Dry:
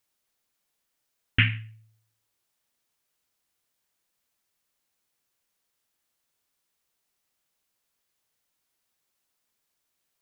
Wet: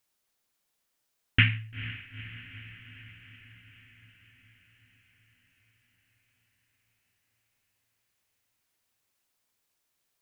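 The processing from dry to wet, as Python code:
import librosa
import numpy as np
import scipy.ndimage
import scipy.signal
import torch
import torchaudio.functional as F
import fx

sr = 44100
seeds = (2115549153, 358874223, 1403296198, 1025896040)

y = fx.echo_diffused(x, sr, ms=465, feedback_pct=66, wet_db=-14.5)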